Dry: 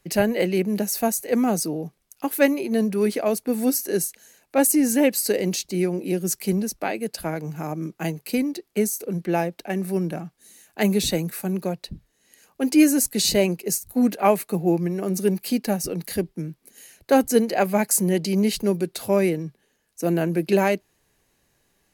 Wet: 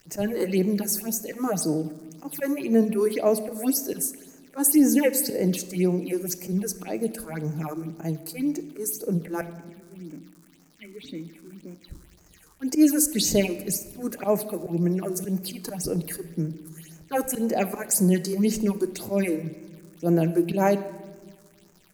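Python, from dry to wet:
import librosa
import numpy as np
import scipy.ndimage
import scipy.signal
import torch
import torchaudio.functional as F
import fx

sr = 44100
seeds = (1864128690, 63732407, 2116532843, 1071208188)

y = fx.auto_swell(x, sr, attack_ms=112.0)
y = fx.vowel_filter(y, sr, vowel='i', at=(9.41, 11.88))
y = fx.dmg_crackle(y, sr, seeds[0], per_s=310.0, level_db=-40.0)
y = fx.phaser_stages(y, sr, stages=6, low_hz=160.0, high_hz=3800.0, hz=1.9, feedback_pct=35)
y = fx.room_shoebox(y, sr, seeds[1], volume_m3=1300.0, walls='mixed', distance_m=0.49)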